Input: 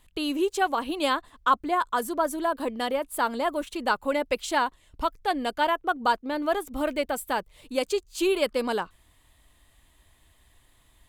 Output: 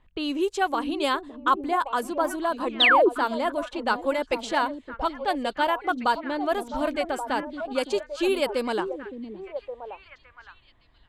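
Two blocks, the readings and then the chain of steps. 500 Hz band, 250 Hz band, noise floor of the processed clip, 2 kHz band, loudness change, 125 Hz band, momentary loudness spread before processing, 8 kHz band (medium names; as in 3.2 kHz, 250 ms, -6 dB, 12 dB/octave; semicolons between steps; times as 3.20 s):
+1.5 dB, +1.5 dB, -59 dBFS, +3.5 dB, +2.0 dB, no reading, 5 LU, -4.5 dB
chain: repeats whose band climbs or falls 564 ms, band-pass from 250 Hz, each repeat 1.4 oct, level -4 dB; level-controlled noise filter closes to 1.9 kHz, open at -20 dBFS; painted sound fall, 2.80–3.09 s, 310–4100 Hz -17 dBFS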